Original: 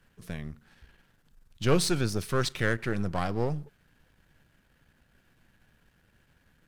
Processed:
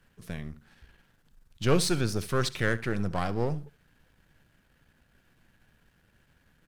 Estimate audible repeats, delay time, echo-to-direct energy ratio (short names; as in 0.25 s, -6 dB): 1, 70 ms, -18.0 dB